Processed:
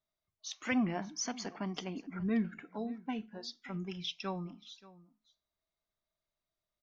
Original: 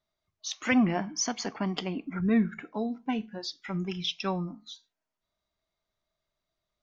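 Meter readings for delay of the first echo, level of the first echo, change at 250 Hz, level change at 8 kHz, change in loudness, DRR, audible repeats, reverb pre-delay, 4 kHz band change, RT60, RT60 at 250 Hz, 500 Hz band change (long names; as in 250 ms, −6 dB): 579 ms, −19.5 dB, −7.5 dB, can't be measured, −7.5 dB, no reverb audible, 1, no reverb audible, −7.5 dB, no reverb audible, no reverb audible, −7.5 dB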